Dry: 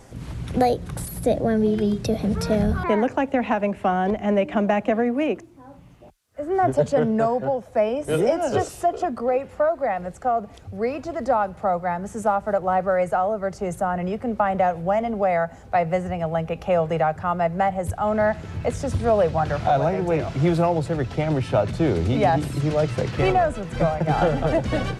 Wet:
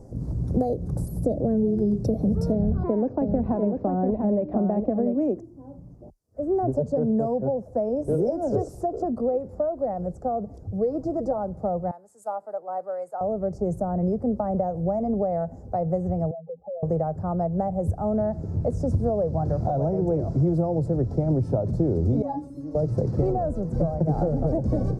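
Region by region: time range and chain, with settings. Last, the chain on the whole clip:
2.52–5.21 LPF 4500 Hz 24 dB/oct + echo 0.694 s -6.5 dB
10.7–11.38 bell 2600 Hz -9.5 dB 0.34 oct + comb 6.3 ms, depth 57%
11.91–13.21 HPF 860 Hz + bell 5900 Hz -10.5 dB 0.31 oct + three-band expander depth 100%
16.31–16.83 spectral contrast raised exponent 3.1 + HPF 440 Hz + compressor, threshold -32 dBFS
22.22–22.75 bell 1000 Hz +6.5 dB 1.4 oct + resonator 280 Hz, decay 0.19 s, mix 100%
whole clip: EQ curve 570 Hz 0 dB, 3000 Hz -24 dB, 5000 Hz -1 dB; compressor, threshold -22 dBFS; tilt shelf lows +8.5 dB, about 1100 Hz; gain -4 dB

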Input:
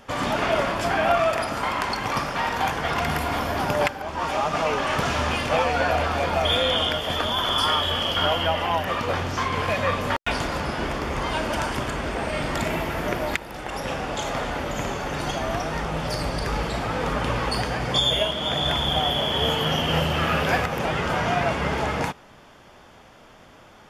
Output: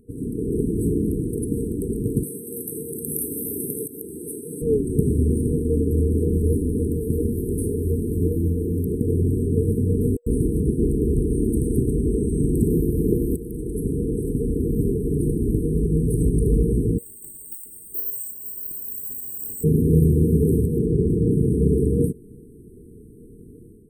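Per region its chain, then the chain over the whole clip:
2.23–4.62 RIAA curve recording + compressor 2.5:1, threshold -25 dBFS + HPF 98 Hz
16.98–19.64 Chebyshev high-pass 2000 Hz, order 5 + careless resampling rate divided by 4×, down none, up hold
20.77–21.31 LPF 4000 Hz 6 dB/oct + Doppler distortion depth 0.5 ms
whole clip: FFT band-reject 480–8000 Hz; high shelf 7300 Hz -6 dB; AGC gain up to 10 dB

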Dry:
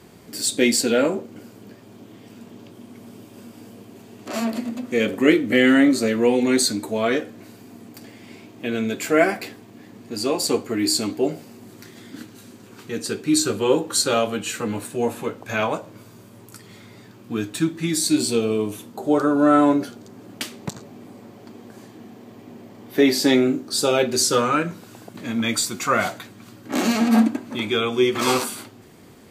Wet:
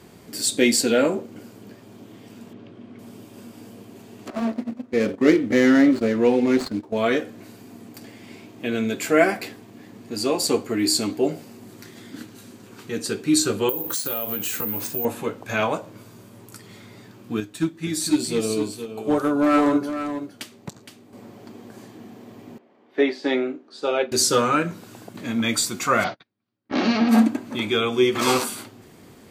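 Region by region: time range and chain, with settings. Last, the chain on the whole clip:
2.53–2.99 LPF 3000 Hz + bell 880 Hz -6 dB 0.26 oct
4.3–6.97 median filter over 15 samples + gate -29 dBFS, range -12 dB + high shelf 9700 Hz -10 dB
13.69–15.05 compressor 12:1, threshold -27 dBFS + careless resampling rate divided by 3×, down none, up zero stuff
17.4–21.13 overloaded stage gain 12.5 dB + echo 0.465 s -6.5 dB + upward expander, over -33 dBFS
22.58–24.12 BPF 340–2900 Hz + upward expander, over -35 dBFS
26.04–27.09 steep low-pass 5400 Hz 48 dB/oct + gate -35 dBFS, range -38 dB
whole clip: dry

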